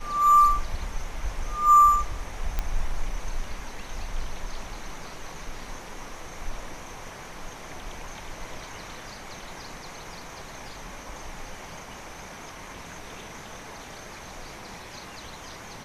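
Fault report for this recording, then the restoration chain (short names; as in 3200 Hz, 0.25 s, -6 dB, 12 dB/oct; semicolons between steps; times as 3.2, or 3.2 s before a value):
2.59 pop -13 dBFS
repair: de-click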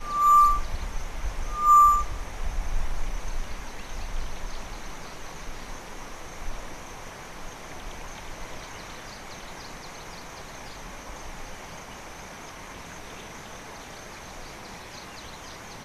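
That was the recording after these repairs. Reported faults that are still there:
none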